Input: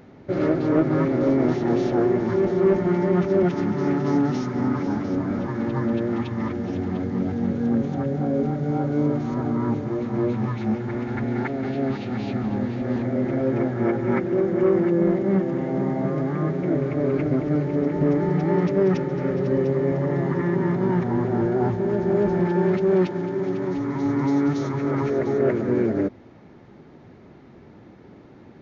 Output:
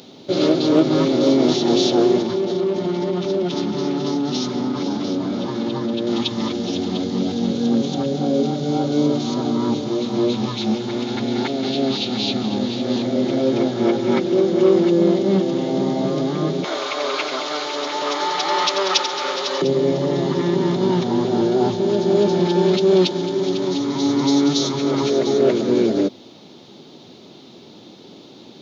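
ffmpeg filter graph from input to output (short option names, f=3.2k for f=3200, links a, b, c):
-filter_complex "[0:a]asettb=1/sr,asplit=3[a][b][c];[a]atrim=end=2.224[d];[b]atrim=start=2.22:end=6.07,asetpts=PTS-STARTPTS,afade=t=in:d=0.004:c=qsin,afade=t=out:st=3.846:d=0.004:c=qsin,lowpass=f=3.8k:p=1,acompressor=threshold=-22dB:ratio=4:attack=3.2:release=140:knee=1:detection=peak[e];[c]atrim=start=6.066[f];[d][e]acrossfade=d=0.004:c1=hsin:c2=qsin[g];[g][f]acrossfade=d=0.004:c1=qsin:c2=hsin,asettb=1/sr,asplit=3[h][i][j];[h]atrim=end=16.644[k];[i]atrim=start=16.64:end=19.62,asetpts=PTS-STARTPTS,afade=t=in:d=0.004:c=qsin,afade=t=out:st=2.976:d=0.004:c=qsin,highpass=f=1.1k:t=q:w=2,acontrast=66,aecho=1:1:89:0.355,atrim=end_sample=131418[l];[j]atrim=start=19.616[m];[k][l]acrossfade=d=0.004:c1=hsin:c2=qsin[n];[n][m]acrossfade=d=0.004:c1=qsin:c2=hsin,highpass=200,highshelf=f=2.6k:t=q:w=3:g=12,volume=5.5dB"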